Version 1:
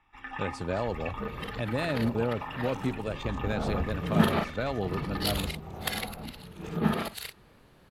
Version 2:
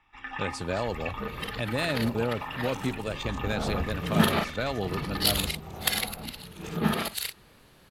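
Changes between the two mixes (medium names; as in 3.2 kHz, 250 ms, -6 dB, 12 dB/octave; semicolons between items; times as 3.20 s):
first sound: add distance through air 72 m; master: add treble shelf 2.3 kHz +9 dB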